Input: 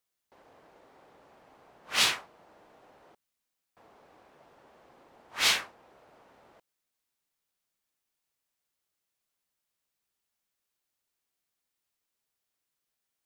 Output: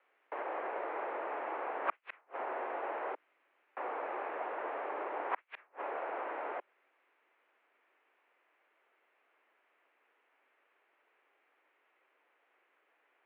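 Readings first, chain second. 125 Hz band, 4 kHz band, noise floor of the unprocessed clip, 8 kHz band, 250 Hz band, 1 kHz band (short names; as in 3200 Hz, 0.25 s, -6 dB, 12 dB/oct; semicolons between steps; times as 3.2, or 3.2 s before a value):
under -20 dB, -30.0 dB, -85 dBFS, under -40 dB, +3.5 dB, +6.5 dB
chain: negative-ratio compressor -35 dBFS, ratio -0.5; flipped gate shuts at -32 dBFS, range -41 dB; mistuned SSB +58 Hz 280–2400 Hz; gain +13 dB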